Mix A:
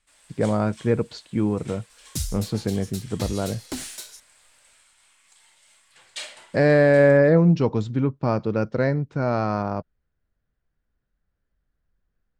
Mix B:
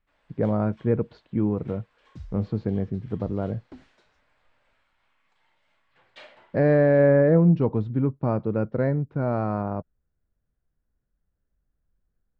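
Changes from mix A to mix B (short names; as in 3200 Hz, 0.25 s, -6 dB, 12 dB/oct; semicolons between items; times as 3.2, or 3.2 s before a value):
second sound -10.5 dB; master: add tape spacing loss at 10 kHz 44 dB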